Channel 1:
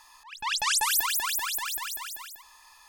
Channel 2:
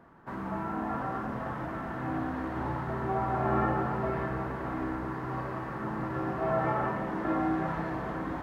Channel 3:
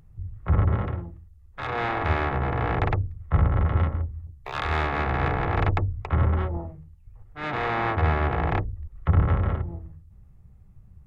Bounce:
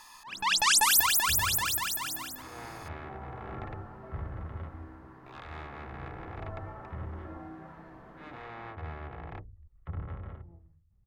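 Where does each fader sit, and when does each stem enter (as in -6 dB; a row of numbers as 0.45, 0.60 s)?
+2.5, -16.5, -18.0 dB; 0.00, 0.00, 0.80 s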